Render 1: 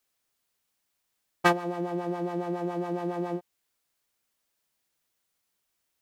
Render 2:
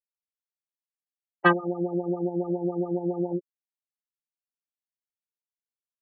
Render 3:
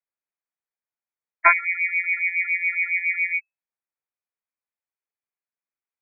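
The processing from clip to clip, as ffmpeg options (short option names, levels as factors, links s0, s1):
-filter_complex "[0:a]afftfilt=real='re*gte(hypot(re,im),0.0631)':imag='im*gte(hypot(re,im),0.0631)':win_size=1024:overlap=0.75,aecho=1:1:5.1:0.86,acrossover=split=350|1300|3800[s0][s1][s2][s3];[s1]acontrast=39[s4];[s0][s4][s2][s3]amix=inputs=4:normalize=0,volume=0.841"
-af "lowpass=f=2200:t=q:w=0.5098,lowpass=f=2200:t=q:w=0.6013,lowpass=f=2200:t=q:w=0.9,lowpass=f=2200:t=q:w=2.563,afreqshift=-2600,volume=1.58"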